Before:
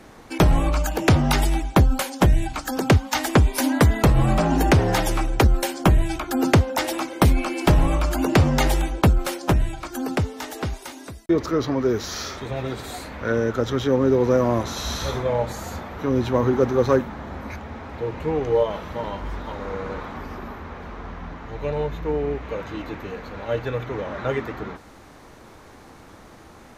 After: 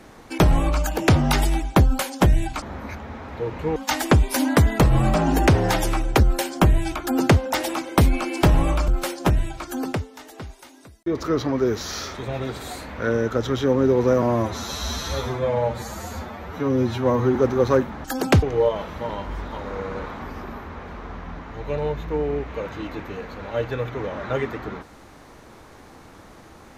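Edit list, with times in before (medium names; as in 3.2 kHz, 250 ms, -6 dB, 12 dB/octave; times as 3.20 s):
2.62–3.00 s: swap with 17.23–18.37 s
8.12–9.11 s: delete
10.07–11.49 s: dip -9 dB, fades 0.24 s
14.45–16.54 s: stretch 1.5×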